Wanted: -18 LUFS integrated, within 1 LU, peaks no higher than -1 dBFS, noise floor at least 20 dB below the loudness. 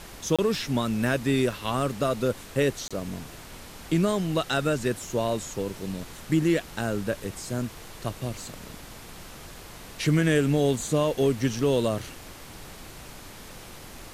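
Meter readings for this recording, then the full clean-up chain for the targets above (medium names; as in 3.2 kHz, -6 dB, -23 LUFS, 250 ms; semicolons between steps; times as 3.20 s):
dropouts 2; longest dropout 26 ms; noise floor -44 dBFS; noise floor target -47 dBFS; loudness -27.0 LUFS; peak level -11.0 dBFS; loudness target -18.0 LUFS
-> interpolate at 0.36/2.88 s, 26 ms; noise print and reduce 6 dB; trim +9 dB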